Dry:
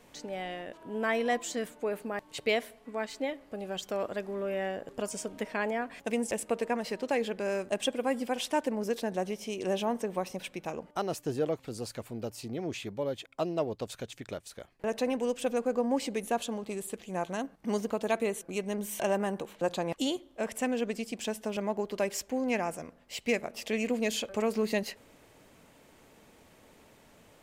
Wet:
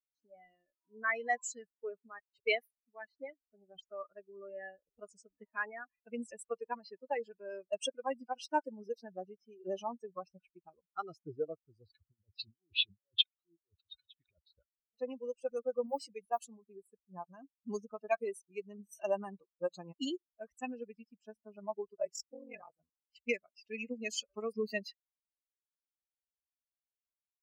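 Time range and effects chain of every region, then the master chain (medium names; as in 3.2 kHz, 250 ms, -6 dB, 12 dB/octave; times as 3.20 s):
11.86–14.94 s: compressor with a negative ratio -41 dBFS + harmonic tremolo 4.8 Hz, crossover 1.1 kHz + resonant low-pass 3.6 kHz, resonance Q 5.5
15.86–16.39 s: band-stop 260 Hz, Q 6.4 + modulation noise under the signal 24 dB
21.94–22.79 s: peaking EQ 540 Hz +4.5 dB 0.51 oct + ring modulator 22 Hz
whole clip: expander on every frequency bin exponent 3; high-pass 550 Hz 6 dB/octave; level-controlled noise filter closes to 850 Hz, open at -36.5 dBFS; trim +4 dB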